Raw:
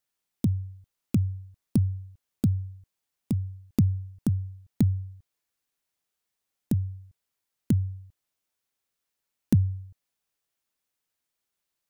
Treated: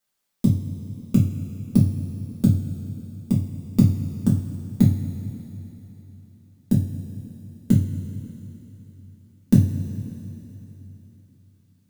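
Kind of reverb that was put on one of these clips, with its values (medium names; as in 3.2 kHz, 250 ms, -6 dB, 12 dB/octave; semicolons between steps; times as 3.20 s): two-slope reverb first 0.32 s, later 3.5 s, from -17 dB, DRR -6 dB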